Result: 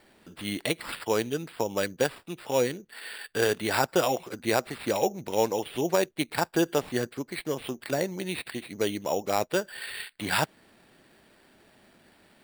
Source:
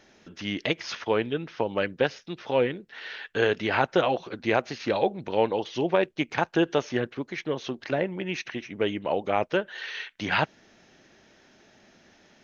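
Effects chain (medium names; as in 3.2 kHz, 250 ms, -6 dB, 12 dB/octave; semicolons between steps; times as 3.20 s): sample-and-hold 7×; trim -1.5 dB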